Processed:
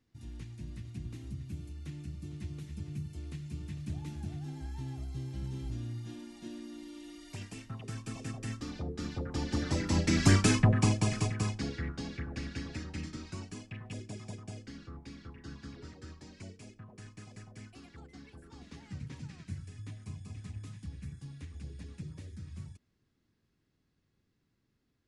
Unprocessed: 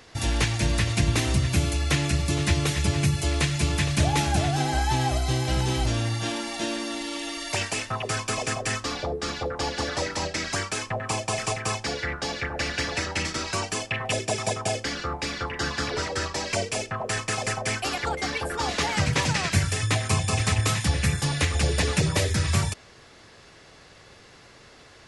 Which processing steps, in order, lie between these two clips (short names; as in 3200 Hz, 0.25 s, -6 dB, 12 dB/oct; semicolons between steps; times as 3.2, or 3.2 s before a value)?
Doppler pass-by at 10.45, 9 m/s, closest 2.3 m; resonant low shelf 380 Hz +12.5 dB, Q 1.5